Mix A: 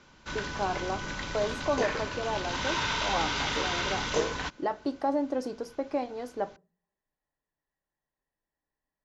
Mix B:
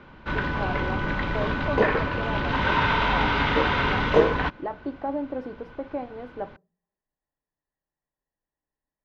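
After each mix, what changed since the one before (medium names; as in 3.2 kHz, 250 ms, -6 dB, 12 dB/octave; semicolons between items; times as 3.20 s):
background +11.5 dB; master: add distance through air 470 m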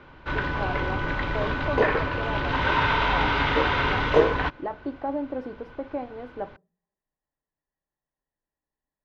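background: add peaking EQ 200 Hz -13 dB 0.29 oct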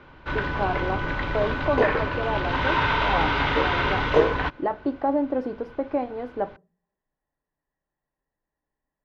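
speech +6.0 dB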